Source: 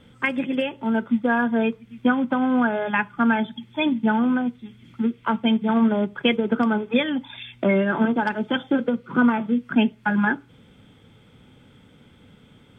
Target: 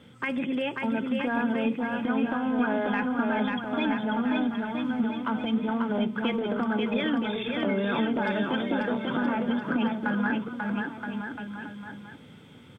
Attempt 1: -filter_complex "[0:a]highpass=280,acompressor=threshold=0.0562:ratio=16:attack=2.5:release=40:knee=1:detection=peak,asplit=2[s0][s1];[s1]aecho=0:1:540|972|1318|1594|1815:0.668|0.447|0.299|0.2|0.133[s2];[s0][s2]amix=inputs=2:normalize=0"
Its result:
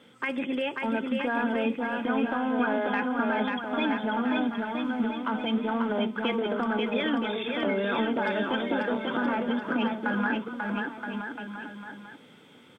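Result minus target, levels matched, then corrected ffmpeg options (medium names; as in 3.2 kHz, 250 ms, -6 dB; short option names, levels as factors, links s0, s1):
125 Hz band -3.5 dB
-filter_complex "[0:a]highpass=100,acompressor=threshold=0.0562:ratio=16:attack=2.5:release=40:knee=1:detection=peak,asplit=2[s0][s1];[s1]aecho=0:1:540|972|1318|1594|1815:0.668|0.447|0.299|0.2|0.133[s2];[s0][s2]amix=inputs=2:normalize=0"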